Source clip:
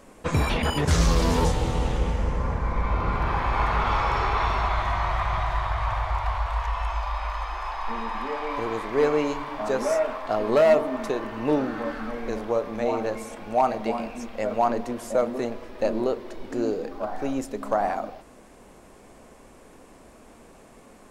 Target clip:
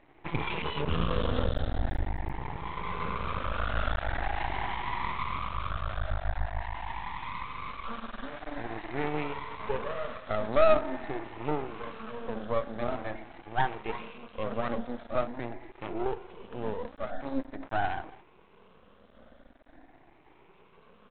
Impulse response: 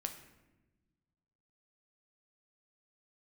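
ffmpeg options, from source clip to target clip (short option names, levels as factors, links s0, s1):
-af "afftfilt=real='re*pow(10,19/40*sin(2*PI*(0.76*log(max(b,1)*sr/1024/100)/log(2)-(0.45)*(pts-256)/sr)))':imag='im*pow(10,19/40*sin(2*PI*(0.76*log(max(b,1)*sr/1024/100)/log(2)-(0.45)*(pts-256)/sr)))':win_size=1024:overlap=0.75,aresample=8000,aeval=exprs='max(val(0),0)':c=same,aresample=44100,volume=0.422"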